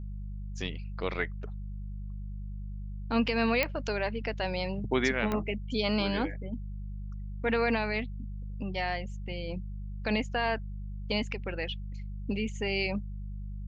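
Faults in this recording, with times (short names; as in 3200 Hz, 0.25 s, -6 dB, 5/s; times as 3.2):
hum 50 Hz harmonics 4 -38 dBFS
3.63 pop -12 dBFS
5.32 pop -17 dBFS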